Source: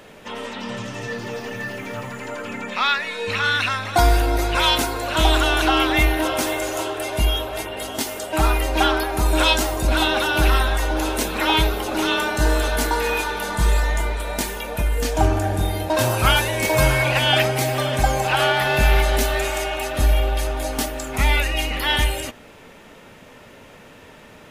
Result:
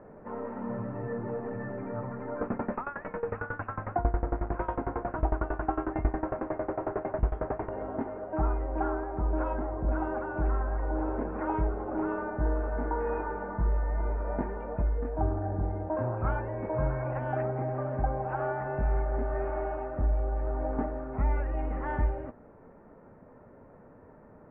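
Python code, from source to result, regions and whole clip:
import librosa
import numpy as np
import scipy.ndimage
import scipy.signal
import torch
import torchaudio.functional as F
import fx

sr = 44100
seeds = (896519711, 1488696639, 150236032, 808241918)

y = fx.chain(x, sr, fx.delta_mod(bps=64000, step_db=-14.0),
    fx.tremolo_decay(direction='decaying', hz=11.0, depth_db=20), at=(2.41, 7.69))
y = scipy.signal.sosfilt(scipy.signal.bessel(8, 900.0, 'lowpass', norm='mag', fs=sr, output='sos'), y)
y = fx.rider(y, sr, range_db=4, speed_s=0.5)
y = F.gain(torch.from_numpy(y), -7.0).numpy()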